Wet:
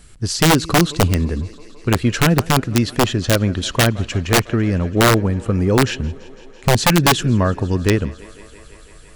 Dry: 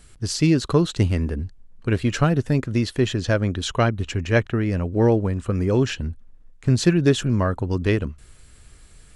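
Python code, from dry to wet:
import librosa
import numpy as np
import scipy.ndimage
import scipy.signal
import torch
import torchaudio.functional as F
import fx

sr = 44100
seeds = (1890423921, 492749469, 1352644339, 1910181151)

y = fx.echo_thinned(x, sr, ms=167, feedback_pct=84, hz=200.0, wet_db=-21)
y = (np.mod(10.0 ** (10.5 / 20.0) * y + 1.0, 2.0) - 1.0) / 10.0 ** (10.5 / 20.0)
y = fx.peak_eq(y, sr, hz=180.0, db=2.0, octaves=0.77)
y = y * 10.0 ** (4.0 / 20.0)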